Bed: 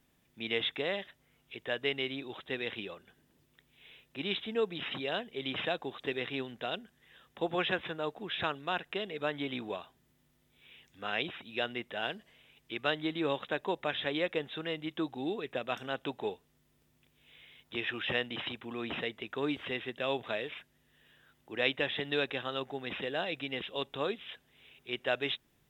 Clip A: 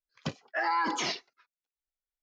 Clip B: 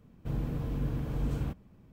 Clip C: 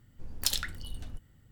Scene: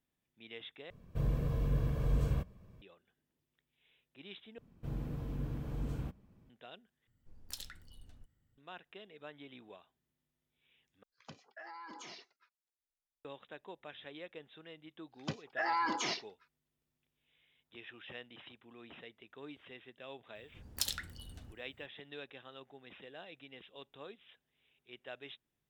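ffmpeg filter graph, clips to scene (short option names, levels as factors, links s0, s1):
-filter_complex "[2:a]asplit=2[s0][s1];[3:a]asplit=2[s2][s3];[1:a]asplit=2[s4][s5];[0:a]volume=0.158[s6];[s0]aecho=1:1:1.8:0.5[s7];[s4]acompressor=threshold=0.00891:ratio=6:attack=3.2:release=140:knee=1:detection=peak[s8];[s3]highpass=50[s9];[s6]asplit=5[s10][s11][s12][s13][s14];[s10]atrim=end=0.904[s15];[s7]atrim=end=1.92,asetpts=PTS-STARTPTS,volume=0.841[s16];[s11]atrim=start=2.816:end=4.584[s17];[s1]atrim=end=1.92,asetpts=PTS-STARTPTS,volume=0.473[s18];[s12]atrim=start=6.496:end=7.074[s19];[s2]atrim=end=1.51,asetpts=PTS-STARTPTS,volume=0.158[s20];[s13]atrim=start=8.576:end=11.034[s21];[s8]atrim=end=2.22,asetpts=PTS-STARTPTS,volume=0.501[s22];[s14]atrim=start=13.246[s23];[s5]atrim=end=2.22,asetpts=PTS-STARTPTS,volume=0.596,afade=t=in:d=0.004:c=hsin,afade=t=out:st=2.216:d=0.004:c=hsin,adelay=15020[s24];[s9]atrim=end=1.51,asetpts=PTS-STARTPTS,volume=0.501,afade=t=in:d=0.004:c=hsin,afade=t=out:st=1.506:d=0.004:c=hsin,adelay=20350[s25];[s15][s16]acrossfade=d=0.004:c1=hsin:c2=hsin[s26];[s26][s17]acrossfade=d=0.004:c1=hsin:c2=hsin[s27];[s27][s18]acrossfade=d=0.004:c1=hsin:c2=hsin[s28];[s28][s19]acrossfade=d=0.004:c1=hsin:c2=hsin[s29];[s29][s20]acrossfade=d=0.004:c1=hsin:c2=hsin[s30];[s30][s21]acrossfade=d=0.004:c1=hsin:c2=hsin[s31];[s31][s22]acrossfade=d=0.004:c1=hsin:c2=hsin[s32];[s32][s23]acrossfade=d=0.004:c1=hsin:c2=hsin[s33];[s33][s24][s25]amix=inputs=3:normalize=0"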